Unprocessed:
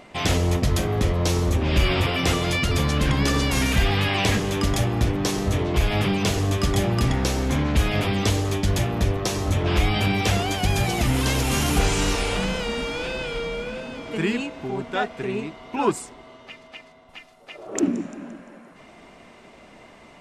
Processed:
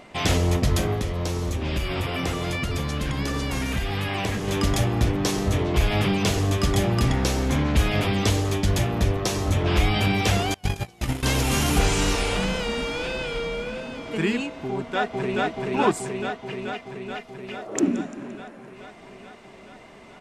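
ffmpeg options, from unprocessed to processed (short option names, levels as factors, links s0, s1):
-filter_complex "[0:a]asettb=1/sr,asplit=3[s0][s1][s2];[s0]atrim=end=0.934[s3];[s1]atrim=start=0.93:end=4.48,asetpts=PTS-STARTPTS,afade=t=in:d=0.004:c=qsin,afade=t=out:st=3.546:d=0.004:c=qsin,acrossover=split=2300|7400[s4][s5][s6];[s4]acompressor=threshold=0.0631:ratio=4[s7];[s5]acompressor=threshold=0.0112:ratio=4[s8];[s6]acompressor=threshold=0.00562:ratio=4[s9];[s7][s8][s9]amix=inputs=3:normalize=0[s10];[s2]atrim=start=4.476[s11];[s3][s10]acrossfade=d=0.004:c1=hsin:c2=qsin[s12];[s12][s11]acrossfade=d=0.004:c1=qsin:c2=hsin,asettb=1/sr,asplit=3[s13][s14][s15];[s13]atrim=end=10.544[s16];[s14]atrim=start=10.54:end=11.23,asetpts=PTS-STARTPTS,afade=t=in:d=0.004:c=qsin,afade=t=out:st=0.686:d=0.004:c=qsin,agate=range=0.0398:threshold=0.1:ratio=16:release=100:detection=peak[s17];[s15]atrim=start=11.226[s18];[s16][s17]acrossfade=d=0.004:c1=hsin:c2=qsin[s19];[s19][s18]acrossfade=d=0.004:c1=qsin:c2=hsin,asplit=2[s20][s21];[s21]afade=t=in:st=14.7:d=0.01,afade=t=out:st=15.44:d=0.01,aecho=0:1:430|860|1290|1720|2150|2580|3010|3440|3870|4300|4730|5160:0.891251|0.668438|0.501329|0.375996|0.281997|0.211498|0.158624|0.118968|0.0892257|0.0669193|0.0501895|0.0376421[s22];[s20][s22]amix=inputs=2:normalize=0"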